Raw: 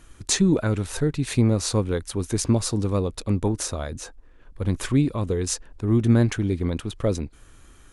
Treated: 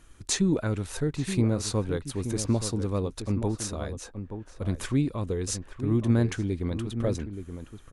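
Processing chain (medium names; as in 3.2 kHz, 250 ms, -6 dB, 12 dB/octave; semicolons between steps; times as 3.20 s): echo from a far wall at 150 m, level -9 dB; trim -5 dB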